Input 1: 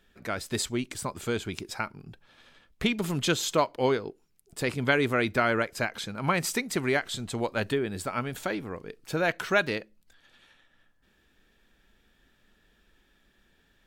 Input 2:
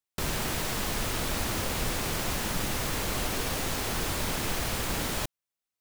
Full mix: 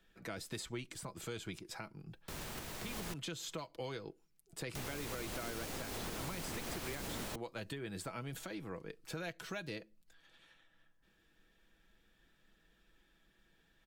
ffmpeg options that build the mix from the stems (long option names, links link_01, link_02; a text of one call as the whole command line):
ffmpeg -i stem1.wav -i stem2.wav -filter_complex "[0:a]aecho=1:1:6.1:0.41,volume=-6.5dB,asplit=2[link_01][link_02];[1:a]adelay=2100,volume=-2dB,asplit=3[link_03][link_04][link_05];[link_03]atrim=end=3.14,asetpts=PTS-STARTPTS,afade=type=out:start_time=3.136:duration=0.004:curve=hsin[link_06];[link_04]atrim=start=3.14:end=4.75,asetpts=PTS-STARTPTS,volume=0[link_07];[link_05]atrim=start=4.75,asetpts=PTS-STARTPTS,afade=type=in:duration=0.004:curve=hsin[link_08];[link_06][link_07][link_08]concat=n=3:v=0:a=1[link_09];[link_02]apad=whole_len=348768[link_10];[link_09][link_10]sidechaingate=range=-12dB:threshold=-59dB:ratio=16:detection=peak[link_11];[link_01][link_11]amix=inputs=2:normalize=0,acrossover=split=130|670|2900[link_12][link_13][link_14][link_15];[link_12]acompressor=threshold=-47dB:ratio=4[link_16];[link_13]acompressor=threshold=-42dB:ratio=4[link_17];[link_14]acompressor=threshold=-47dB:ratio=4[link_18];[link_15]acompressor=threshold=-45dB:ratio=4[link_19];[link_16][link_17][link_18][link_19]amix=inputs=4:normalize=0,alimiter=level_in=7.5dB:limit=-24dB:level=0:latency=1:release=149,volume=-7.5dB" out.wav